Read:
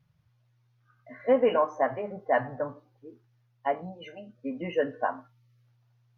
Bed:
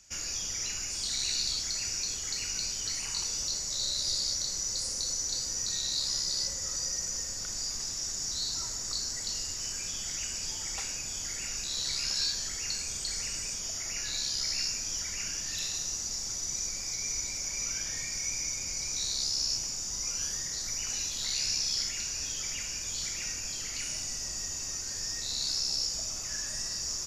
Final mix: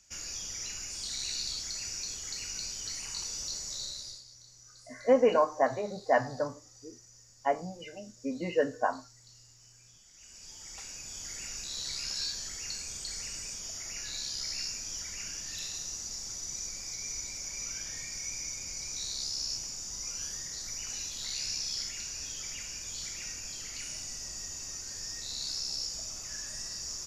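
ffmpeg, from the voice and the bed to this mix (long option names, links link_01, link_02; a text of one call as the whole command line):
ffmpeg -i stem1.wav -i stem2.wav -filter_complex "[0:a]adelay=3800,volume=-0.5dB[link_01];[1:a]volume=13.5dB,afade=type=out:start_time=3.69:duration=0.55:silence=0.125893,afade=type=in:start_time=10.13:duration=1.25:silence=0.125893[link_02];[link_01][link_02]amix=inputs=2:normalize=0" out.wav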